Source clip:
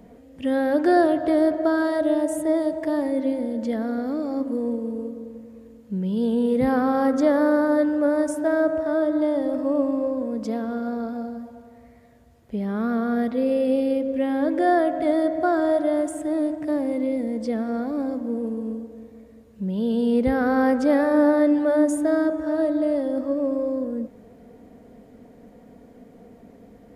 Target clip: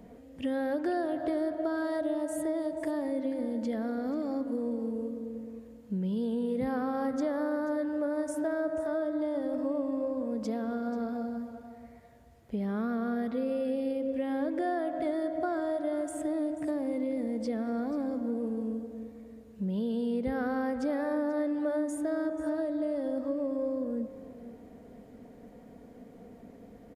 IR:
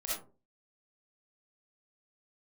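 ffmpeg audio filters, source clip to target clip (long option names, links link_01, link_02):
-af "acompressor=threshold=-26dB:ratio=4,aecho=1:1:486:0.168,volume=-3dB"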